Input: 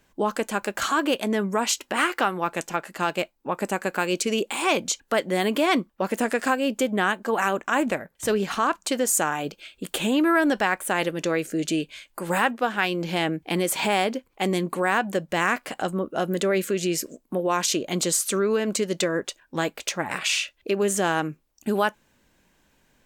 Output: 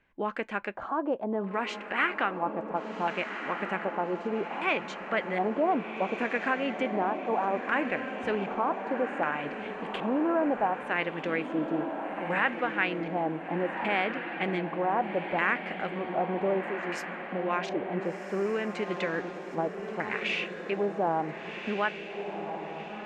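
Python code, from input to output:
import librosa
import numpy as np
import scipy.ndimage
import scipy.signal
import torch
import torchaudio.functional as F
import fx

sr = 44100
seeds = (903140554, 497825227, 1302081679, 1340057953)

y = fx.filter_lfo_lowpass(x, sr, shape='square', hz=0.65, low_hz=820.0, high_hz=2200.0, q=2.3)
y = fx.riaa(y, sr, side='recording', at=(16.63, 17.06))
y = fx.echo_diffused(y, sr, ms=1459, feedback_pct=52, wet_db=-7.0)
y = y * 10.0 ** (-8.0 / 20.0)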